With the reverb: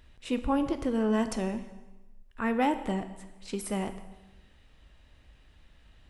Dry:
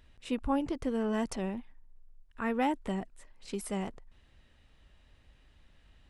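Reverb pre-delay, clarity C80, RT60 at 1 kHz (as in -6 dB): 4 ms, 13.5 dB, 1.1 s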